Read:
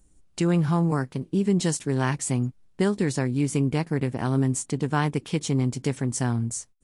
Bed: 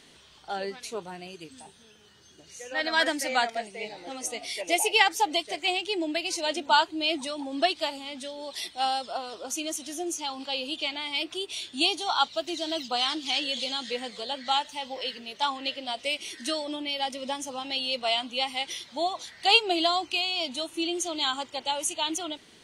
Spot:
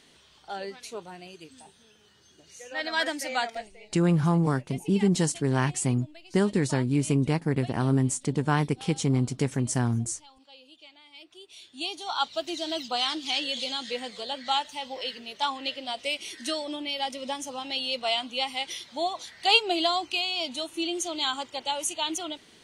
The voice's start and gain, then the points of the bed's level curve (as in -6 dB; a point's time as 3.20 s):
3.55 s, -0.5 dB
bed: 3.56 s -3 dB
3.95 s -20.5 dB
11.09 s -20.5 dB
12.37 s -0.5 dB